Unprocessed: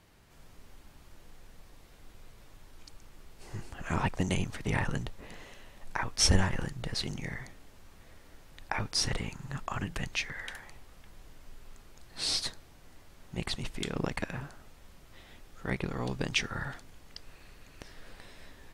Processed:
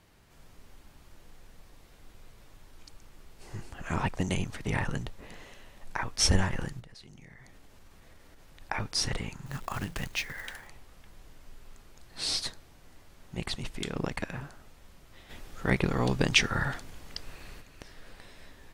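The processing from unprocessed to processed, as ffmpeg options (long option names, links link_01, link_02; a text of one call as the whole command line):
ffmpeg -i in.wav -filter_complex "[0:a]asplit=3[link_01][link_02][link_03];[link_01]afade=type=out:start_time=6.79:duration=0.02[link_04];[link_02]acompressor=threshold=-48dB:ratio=6:attack=3.2:release=140:knee=1:detection=peak,afade=type=in:start_time=6.79:duration=0.02,afade=type=out:start_time=8.59:duration=0.02[link_05];[link_03]afade=type=in:start_time=8.59:duration=0.02[link_06];[link_04][link_05][link_06]amix=inputs=3:normalize=0,asettb=1/sr,asplit=3[link_07][link_08][link_09];[link_07]atrim=end=9.464[link_10];[link_08]atrim=start=9.46:end=10.67,asetpts=PTS-STARTPTS,afade=type=in:duration=0.004:curve=qsin,afade=type=out:start_time=1.206:duration=0.004:curve=qsin,acrusher=bits=3:mode=log:mix=0:aa=0.000001[link_11];[link_09]atrim=start=10.666[link_12];[link_10][link_11]acrossfade=duration=0.004:curve1=hsin:curve2=qsin[link_13];[link_13][link_12]acrossfade=duration=0.004:curve1=qsin:curve2=hsin,asplit=3[link_14][link_15][link_16];[link_14]afade=type=out:start_time=15.29:duration=0.02[link_17];[link_15]acontrast=79,afade=type=in:start_time=15.29:duration=0.02,afade=type=out:start_time=17.6:duration=0.02[link_18];[link_16]afade=type=in:start_time=17.6:duration=0.02[link_19];[link_17][link_18][link_19]amix=inputs=3:normalize=0" out.wav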